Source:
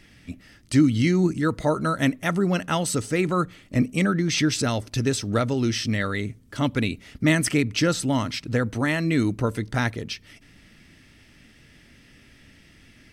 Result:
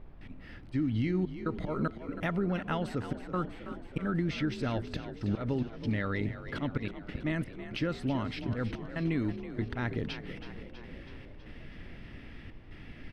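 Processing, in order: treble shelf 5.9 kHz +11 dB; slow attack 226 ms; compression 5:1, threshold -32 dBFS, peak gain reduction 14.5 dB; trance gate ".xxxxx.xx" 72 bpm -24 dB; added noise brown -52 dBFS; distance through air 400 m; on a send: frequency-shifting echo 324 ms, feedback 63%, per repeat +38 Hz, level -12 dB; on the sum: trim +4 dB

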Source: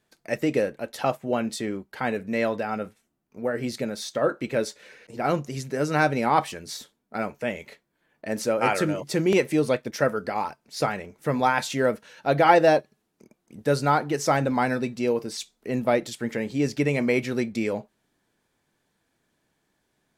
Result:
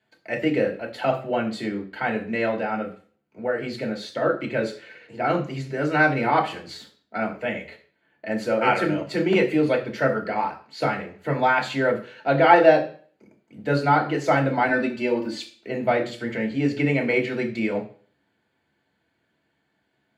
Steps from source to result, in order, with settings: 14.68–15.54 s: comb 3.4 ms, depth 93%; reverberation RT60 0.40 s, pre-delay 3 ms, DRR -1 dB; trim -11 dB

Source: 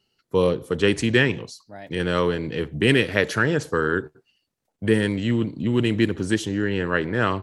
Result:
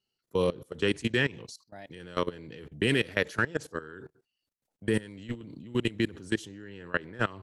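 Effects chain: treble shelf 3.8 kHz +5 dB; level held to a coarse grid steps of 20 dB; trim -4.5 dB

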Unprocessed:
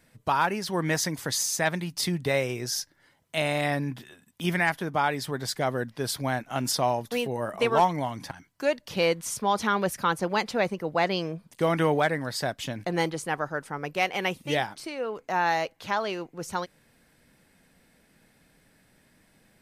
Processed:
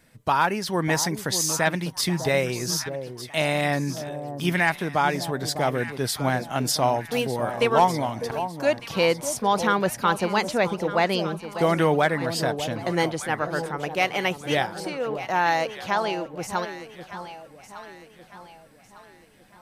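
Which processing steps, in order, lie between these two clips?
echo whose repeats swap between lows and highs 602 ms, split 970 Hz, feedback 62%, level -9 dB; trim +3 dB

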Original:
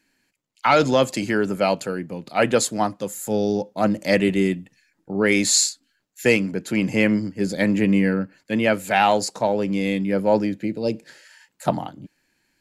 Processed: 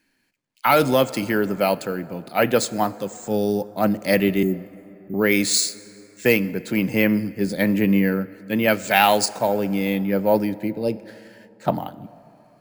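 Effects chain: 8.68–9.26 s: treble shelf 2.9 kHz +10.5 dB; careless resampling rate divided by 3×, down filtered, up hold; 4.43–5.14 s: Chebyshev band-stop 390–6700 Hz, order 5; 10.70–11.75 s: treble shelf 6.1 kHz -10 dB; plate-style reverb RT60 3.4 s, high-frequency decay 0.45×, DRR 17.5 dB

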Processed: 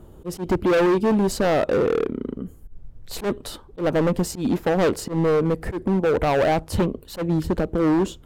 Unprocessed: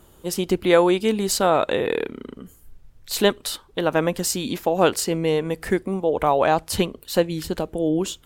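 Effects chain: tilt shelf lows +9 dB, about 1.1 kHz; overload inside the chain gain 16 dB; slow attack 107 ms

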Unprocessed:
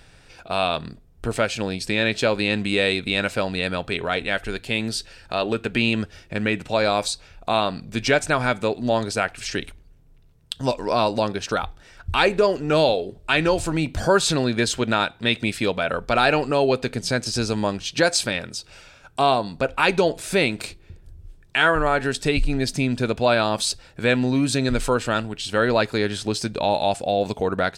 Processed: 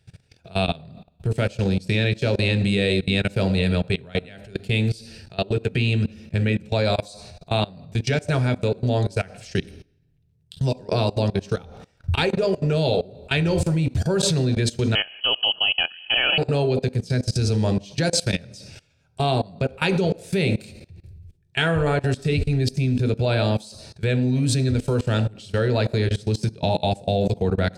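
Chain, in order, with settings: peaking EQ 1.1 kHz -10 dB 1 oct; on a send at -7 dB: reverberation RT60 0.90 s, pre-delay 3 ms; on the sum: level held to a coarse grid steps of 22 dB; 14.95–16.38 s: frequency inversion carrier 3.1 kHz; trim +2 dB

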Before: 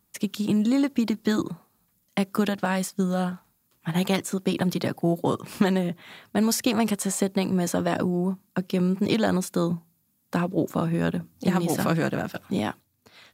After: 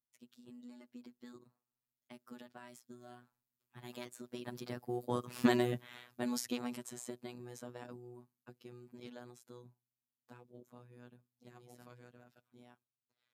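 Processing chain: Doppler pass-by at 5.63 s, 10 m/s, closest 2.4 m; robot voice 122 Hz; trim -2 dB

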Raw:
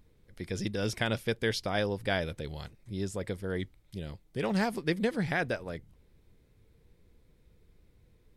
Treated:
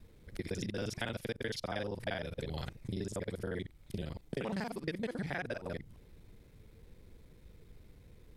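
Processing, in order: time reversed locally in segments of 39 ms; compression 6:1, threshold -41 dBFS, peak gain reduction 16.5 dB; trim +6 dB

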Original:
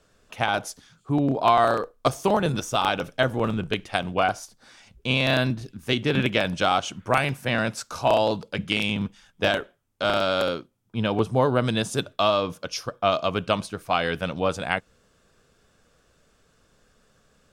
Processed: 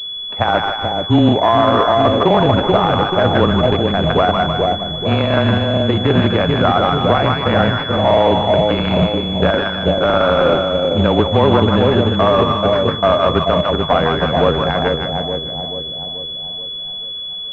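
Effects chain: on a send: two-band feedback delay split 790 Hz, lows 433 ms, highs 152 ms, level -3.5 dB; on the sum: short-mantissa float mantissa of 2-bit; frequency shift -20 Hz; loudness maximiser +12 dB; class-D stage that switches slowly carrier 3.4 kHz; trim -1 dB

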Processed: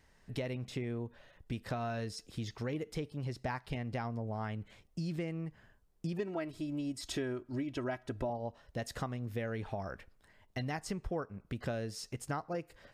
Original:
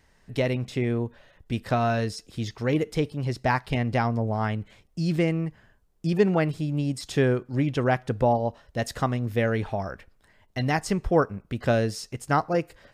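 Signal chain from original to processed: 6.19–8.30 s: comb 3.1 ms, depth 69%; compression 4:1, threshold -31 dBFS, peak gain reduction 14 dB; trim -4.5 dB

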